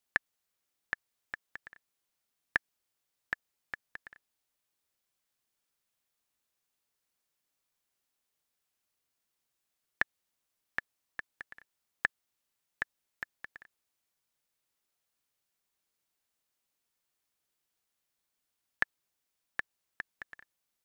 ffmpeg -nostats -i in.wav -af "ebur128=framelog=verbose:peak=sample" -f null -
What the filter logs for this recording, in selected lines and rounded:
Integrated loudness:
  I:         -39.2 LUFS
  Threshold: -50.6 LUFS
Loudness range:
  LRA:        13.4 LU
  Threshold: -63.6 LUFS
  LRA low:   -54.0 LUFS
  LRA high:  -40.6 LUFS
Sample peak:
  Peak:      -10.1 dBFS